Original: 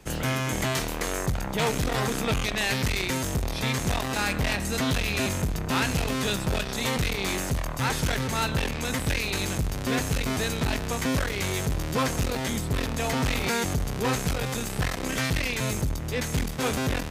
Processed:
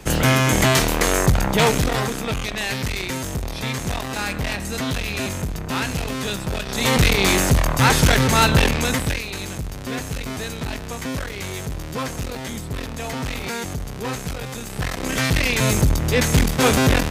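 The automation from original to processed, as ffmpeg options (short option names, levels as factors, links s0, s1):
-af "volume=42.2,afade=t=out:st=1.45:d=0.71:silence=0.334965,afade=t=in:st=6.63:d=0.41:silence=0.316228,afade=t=out:st=8.65:d=0.59:silence=0.237137,afade=t=in:st=14.65:d=1.23:silence=0.251189"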